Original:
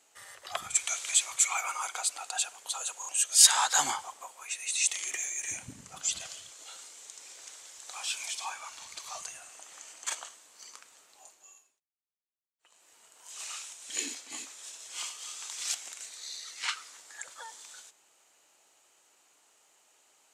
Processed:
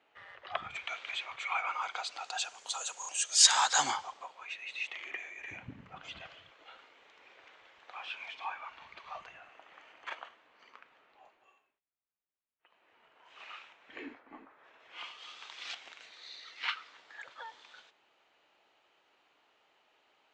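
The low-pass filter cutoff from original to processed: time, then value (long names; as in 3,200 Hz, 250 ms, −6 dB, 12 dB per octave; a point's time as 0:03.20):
low-pass filter 24 dB per octave
0:01.50 3,000 Hz
0:02.67 6,900 Hz
0:03.70 6,900 Hz
0:04.82 2,700 Hz
0:13.64 2,700 Hz
0:14.42 1,400 Hz
0:15.19 3,600 Hz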